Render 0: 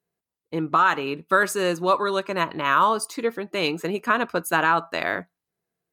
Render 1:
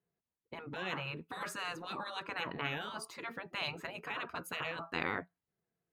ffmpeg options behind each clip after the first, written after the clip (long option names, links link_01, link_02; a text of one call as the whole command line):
ffmpeg -i in.wav -af "bass=frequency=250:gain=4,treble=frequency=4000:gain=-12,afftfilt=real='re*lt(hypot(re,im),0.158)':imag='im*lt(hypot(re,im),0.158)':win_size=1024:overlap=0.75,volume=-5.5dB" out.wav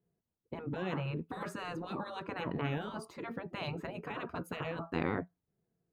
ffmpeg -i in.wav -af "tiltshelf=frequency=820:gain=8.5,volume=1dB" out.wav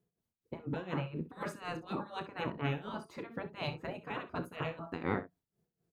ffmpeg -i in.wav -af "tremolo=f=4.1:d=0.85,aecho=1:1:31|64:0.224|0.2,volume=2.5dB" out.wav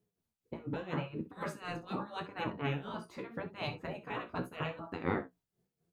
ffmpeg -i in.wav -af "flanger=delay=9.4:depth=8:regen=34:speed=0.82:shape=sinusoidal,volume=4dB" out.wav